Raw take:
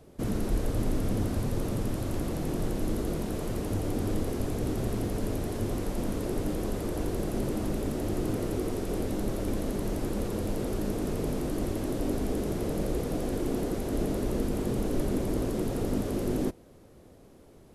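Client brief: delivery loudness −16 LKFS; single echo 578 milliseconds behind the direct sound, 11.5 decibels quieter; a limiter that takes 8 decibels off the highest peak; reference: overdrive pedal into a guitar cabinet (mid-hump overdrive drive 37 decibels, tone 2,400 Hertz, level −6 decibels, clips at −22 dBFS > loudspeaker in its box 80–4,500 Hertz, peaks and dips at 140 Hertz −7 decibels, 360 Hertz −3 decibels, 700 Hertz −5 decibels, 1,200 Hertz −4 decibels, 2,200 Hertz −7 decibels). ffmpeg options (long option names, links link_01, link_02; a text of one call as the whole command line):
ffmpeg -i in.wav -filter_complex "[0:a]alimiter=level_in=0.5dB:limit=-24dB:level=0:latency=1,volume=-0.5dB,aecho=1:1:578:0.266,asplit=2[link_01][link_02];[link_02]highpass=frequency=720:poles=1,volume=37dB,asoftclip=type=tanh:threshold=-22dB[link_03];[link_01][link_03]amix=inputs=2:normalize=0,lowpass=frequency=2400:poles=1,volume=-6dB,highpass=80,equalizer=frequency=140:width_type=q:width=4:gain=-7,equalizer=frequency=360:width_type=q:width=4:gain=-3,equalizer=frequency=700:width_type=q:width=4:gain=-5,equalizer=frequency=1200:width_type=q:width=4:gain=-4,equalizer=frequency=2200:width_type=q:width=4:gain=-7,lowpass=frequency=4500:width=0.5412,lowpass=frequency=4500:width=1.3066,volume=15dB" out.wav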